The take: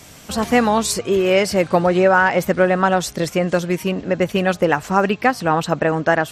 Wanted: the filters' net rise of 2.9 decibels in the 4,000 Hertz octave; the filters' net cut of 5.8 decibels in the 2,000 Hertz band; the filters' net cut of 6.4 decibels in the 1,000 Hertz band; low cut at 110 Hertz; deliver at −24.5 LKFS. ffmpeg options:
ffmpeg -i in.wav -af "highpass=110,equalizer=frequency=1000:width_type=o:gain=-8,equalizer=frequency=2000:width_type=o:gain=-6,equalizer=frequency=4000:width_type=o:gain=6.5,volume=-4.5dB" out.wav

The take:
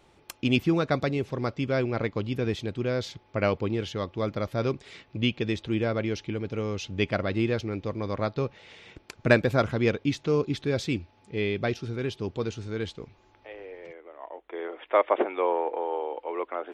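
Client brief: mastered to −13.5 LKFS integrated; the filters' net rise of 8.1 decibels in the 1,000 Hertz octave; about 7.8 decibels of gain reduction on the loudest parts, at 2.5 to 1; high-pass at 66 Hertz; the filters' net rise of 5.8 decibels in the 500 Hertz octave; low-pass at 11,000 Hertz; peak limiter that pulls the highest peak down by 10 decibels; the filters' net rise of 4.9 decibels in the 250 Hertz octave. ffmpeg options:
ffmpeg -i in.wav -af "highpass=66,lowpass=11000,equalizer=frequency=250:width_type=o:gain=4.5,equalizer=frequency=500:width_type=o:gain=3.5,equalizer=frequency=1000:width_type=o:gain=9,acompressor=threshold=-21dB:ratio=2.5,volume=16.5dB,alimiter=limit=-1dB:level=0:latency=1" out.wav

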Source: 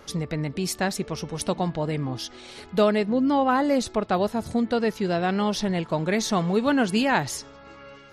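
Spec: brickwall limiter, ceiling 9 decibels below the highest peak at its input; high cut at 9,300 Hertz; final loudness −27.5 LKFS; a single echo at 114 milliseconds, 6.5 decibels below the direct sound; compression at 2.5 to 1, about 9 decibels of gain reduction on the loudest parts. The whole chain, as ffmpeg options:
ffmpeg -i in.wav -af "lowpass=9300,acompressor=threshold=-30dB:ratio=2.5,alimiter=level_in=1.5dB:limit=-24dB:level=0:latency=1,volume=-1.5dB,aecho=1:1:114:0.473,volume=6.5dB" out.wav

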